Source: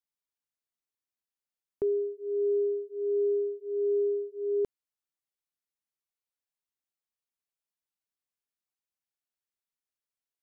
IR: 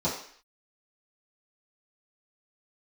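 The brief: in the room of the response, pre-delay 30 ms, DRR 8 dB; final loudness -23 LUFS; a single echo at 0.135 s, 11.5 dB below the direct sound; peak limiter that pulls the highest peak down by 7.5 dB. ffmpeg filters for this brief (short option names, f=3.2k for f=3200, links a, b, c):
-filter_complex "[0:a]alimiter=level_in=6dB:limit=-24dB:level=0:latency=1,volume=-6dB,aecho=1:1:135:0.266,asplit=2[a][b];[1:a]atrim=start_sample=2205,adelay=30[c];[b][c]afir=irnorm=-1:irlink=0,volume=-18dB[d];[a][d]amix=inputs=2:normalize=0,volume=11dB"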